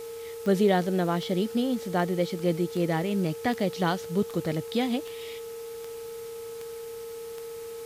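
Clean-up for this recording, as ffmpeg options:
-af "adeclick=t=4,bandreject=f=430.6:t=h:w=4,bandreject=f=861.2:t=h:w=4,bandreject=f=1291.8:t=h:w=4,bandreject=f=460:w=30,afwtdn=0.0035"

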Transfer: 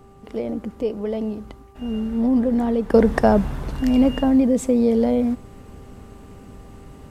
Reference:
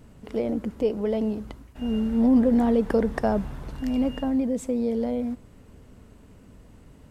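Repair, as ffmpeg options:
-af "bandreject=f=394.2:t=h:w=4,bandreject=f=788.4:t=h:w=4,bandreject=f=1182.6:t=h:w=4,asetnsamples=n=441:p=0,asendcmd='2.94 volume volume -8dB',volume=1"

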